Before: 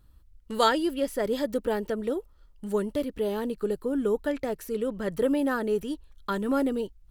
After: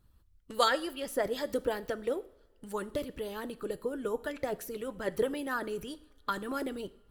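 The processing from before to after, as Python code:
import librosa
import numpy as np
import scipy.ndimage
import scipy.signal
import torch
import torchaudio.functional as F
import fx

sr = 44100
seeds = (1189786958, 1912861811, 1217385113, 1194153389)

y = fx.hpss(x, sr, part='harmonic', gain_db=-12)
y = fx.rev_double_slope(y, sr, seeds[0], early_s=0.59, late_s=3.4, knee_db=-26, drr_db=14.0)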